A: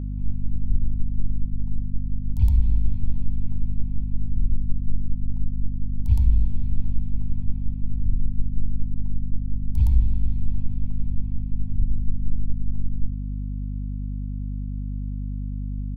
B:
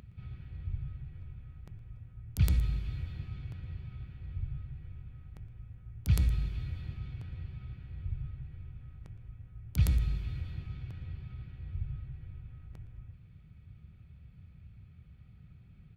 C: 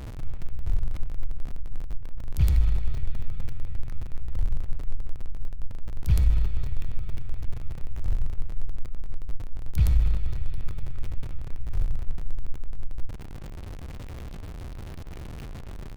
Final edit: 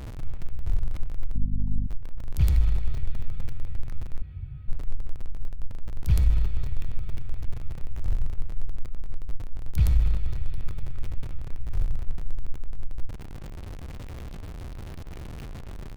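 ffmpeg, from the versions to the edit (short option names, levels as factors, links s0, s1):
-filter_complex "[2:a]asplit=3[s0][s1][s2];[s0]atrim=end=1.352[s3];[0:a]atrim=start=1.348:end=1.872[s4];[s1]atrim=start=1.868:end=4.222[s5];[1:a]atrim=start=4.218:end=4.682[s6];[s2]atrim=start=4.678[s7];[s3][s4]acrossfade=d=0.004:c1=hsin:c2=hsin[s8];[s8][s5]acrossfade=d=0.004:c1=hsin:c2=hsin[s9];[s9][s6]acrossfade=d=0.004:c1=hsin:c2=hsin[s10];[s10][s7]acrossfade=d=0.004:c1=hsin:c2=hsin"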